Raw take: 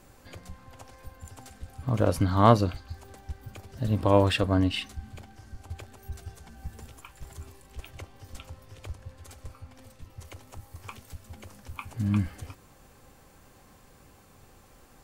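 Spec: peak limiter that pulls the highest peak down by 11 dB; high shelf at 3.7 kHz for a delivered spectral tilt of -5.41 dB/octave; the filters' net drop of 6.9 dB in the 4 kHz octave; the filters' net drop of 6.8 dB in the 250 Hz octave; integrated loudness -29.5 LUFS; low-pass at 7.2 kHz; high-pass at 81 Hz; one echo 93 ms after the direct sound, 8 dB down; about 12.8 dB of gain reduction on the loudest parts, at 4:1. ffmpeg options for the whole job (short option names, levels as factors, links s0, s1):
-af "highpass=81,lowpass=7200,equalizer=f=250:t=o:g=-8.5,highshelf=f=3700:g=-5,equalizer=f=4000:t=o:g=-6.5,acompressor=threshold=0.0316:ratio=4,alimiter=level_in=1.58:limit=0.0631:level=0:latency=1,volume=0.631,aecho=1:1:93:0.398,volume=5.31"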